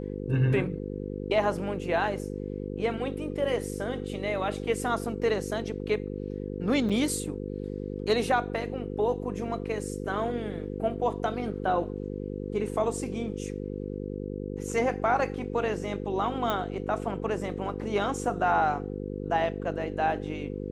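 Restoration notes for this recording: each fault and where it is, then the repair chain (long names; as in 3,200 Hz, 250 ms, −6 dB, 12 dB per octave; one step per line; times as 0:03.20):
mains buzz 50 Hz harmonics 10 −35 dBFS
0:06.89–0:06.90: drop-out 6.2 ms
0:16.50: click −15 dBFS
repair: click removal
hum removal 50 Hz, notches 10
repair the gap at 0:06.89, 6.2 ms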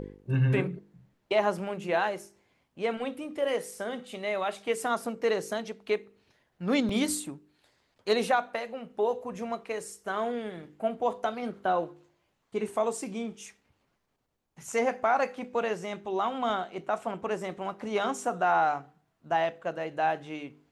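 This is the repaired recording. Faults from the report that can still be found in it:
none of them is left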